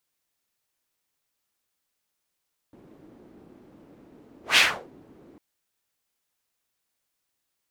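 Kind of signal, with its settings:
pass-by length 2.65 s, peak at 0:01.84, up 0.15 s, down 0.35 s, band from 300 Hz, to 2,900 Hz, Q 1.9, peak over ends 35 dB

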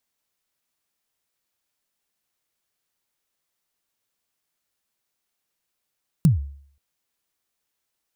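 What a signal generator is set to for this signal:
synth kick length 0.53 s, from 180 Hz, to 70 Hz, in 136 ms, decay 0.57 s, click on, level −9 dB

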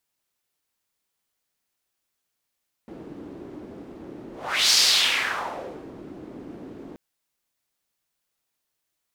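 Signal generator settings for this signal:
pass-by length 4.08 s, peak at 0:01.84, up 0.43 s, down 1.29 s, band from 310 Hz, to 4,900 Hz, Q 2.6, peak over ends 22.5 dB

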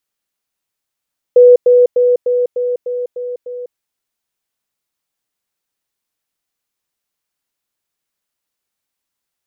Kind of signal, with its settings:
level staircase 492 Hz −2 dBFS, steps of −3 dB, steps 8, 0.20 s 0.10 s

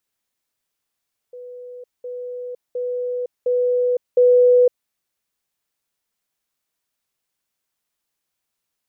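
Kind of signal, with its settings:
level staircase 494 Hz −33.5 dBFS, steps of 6 dB, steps 5, 0.51 s 0.20 s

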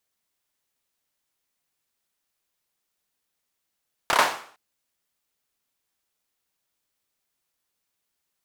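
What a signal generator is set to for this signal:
synth clap length 0.46 s, apart 29 ms, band 940 Hz, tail 0.49 s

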